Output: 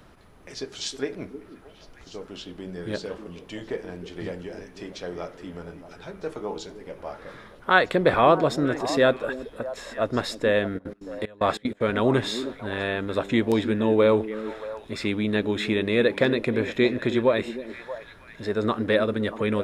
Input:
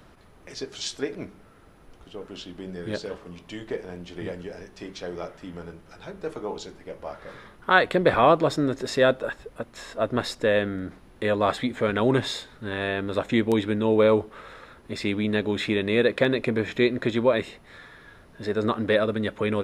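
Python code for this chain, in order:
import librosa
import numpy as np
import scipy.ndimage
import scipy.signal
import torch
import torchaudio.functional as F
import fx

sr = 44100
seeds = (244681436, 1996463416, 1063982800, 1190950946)

y = fx.echo_stepped(x, sr, ms=314, hz=290.0, octaves=1.4, feedback_pct=70, wet_db=-8.0)
y = fx.step_gate(y, sr, bpm=188, pattern='x.x.x.xxx..x', floor_db=-24.0, edge_ms=4.5, at=(10.77, 11.8), fade=0.02)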